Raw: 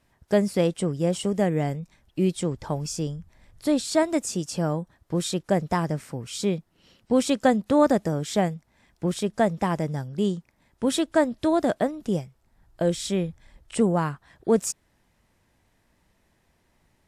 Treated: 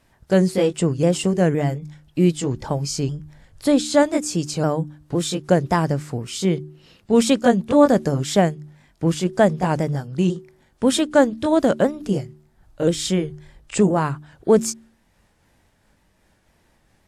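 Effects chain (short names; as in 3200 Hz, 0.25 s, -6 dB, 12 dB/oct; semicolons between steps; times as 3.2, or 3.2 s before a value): repeated pitch sweeps -2 st, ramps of 0.515 s; de-hum 75.01 Hz, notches 5; gain +6.5 dB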